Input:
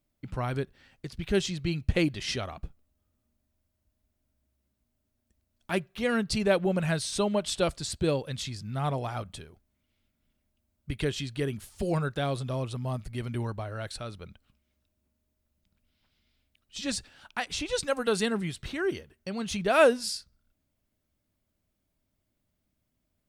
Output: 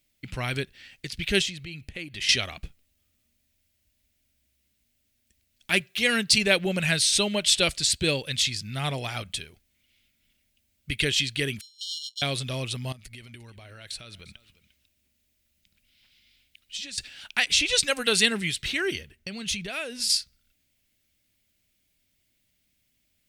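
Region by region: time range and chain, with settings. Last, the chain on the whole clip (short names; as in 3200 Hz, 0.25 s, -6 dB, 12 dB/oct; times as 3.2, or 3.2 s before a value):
1.42–2.29 bell 5200 Hz -6 dB 1.6 oct + compressor 8:1, threshold -37 dBFS
5.8–6.38 HPF 71 Hz + tone controls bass -1 dB, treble +3 dB
11.61–12.22 sample sorter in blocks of 32 samples + brick-wall FIR high-pass 2900 Hz + air absorption 140 m
12.92–16.98 compressor 16:1, threshold -43 dBFS + echo 0.35 s -18.5 dB
18.95–20.1 low shelf 170 Hz +8.5 dB + compressor 5:1, threshold -35 dBFS + mismatched tape noise reduction decoder only
whole clip: de-esser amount 50%; resonant high shelf 1600 Hz +11.5 dB, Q 1.5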